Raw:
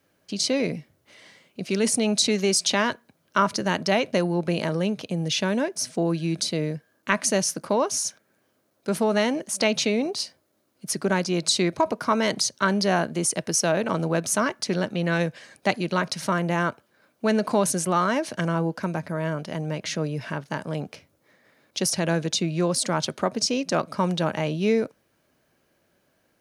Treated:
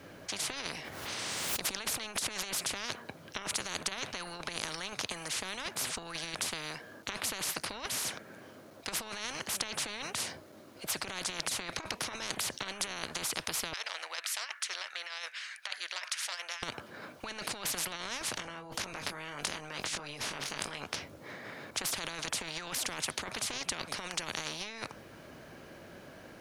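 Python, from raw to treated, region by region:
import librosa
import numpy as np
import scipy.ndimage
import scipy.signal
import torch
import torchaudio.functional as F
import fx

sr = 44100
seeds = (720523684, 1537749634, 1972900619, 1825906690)

y = fx.chain(x, sr, fx.quant_float(bits=8),
    fx.pre_swell(db_per_s=38.0), at=(0.74, 2.44))
y = fx.chain(y, sr, fx.ladder_highpass(hz=1700.0, resonance_pct=85),
    fx.over_compress(threshold_db=-35.0, ratio=-1.0),
    fx.transformer_sat(knee_hz=2200.0), at=(13.73, 16.63))
y = fx.chain(y, sr, fx.over_compress(threshold_db=-38.0, ratio=-1.0),
    fx.doubler(ms=21.0, db=-6.5), at=(18.36, 20.83))
y = fx.lowpass(y, sr, hz=3600.0, slope=6)
y = fx.over_compress(y, sr, threshold_db=-26.0, ratio=-0.5)
y = fx.spectral_comp(y, sr, ratio=10.0)
y = y * 10.0 ** (-3.0 / 20.0)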